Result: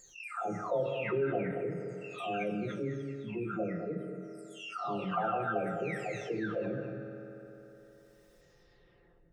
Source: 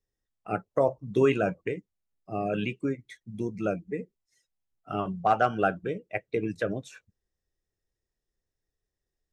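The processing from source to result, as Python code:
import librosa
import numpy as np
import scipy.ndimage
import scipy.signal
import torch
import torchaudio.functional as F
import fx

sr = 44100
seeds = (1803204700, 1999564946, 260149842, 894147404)

p1 = fx.spec_delay(x, sr, highs='early', ms=915)
p2 = fx.highpass(p1, sr, hz=52.0, slope=6)
p3 = fx.high_shelf(p2, sr, hz=6300.0, db=-8.5)
p4 = fx.hum_notches(p3, sr, base_hz=50, count=8)
p5 = p4 + fx.echo_single(p4, sr, ms=220, db=-13.0, dry=0)
p6 = fx.rev_fdn(p5, sr, rt60_s=1.9, lf_ratio=0.85, hf_ratio=0.75, size_ms=11.0, drr_db=7.5)
p7 = fx.env_flatten(p6, sr, amount_pct=50)
y = p7 * librosa.db_to_amplitude(-7.5)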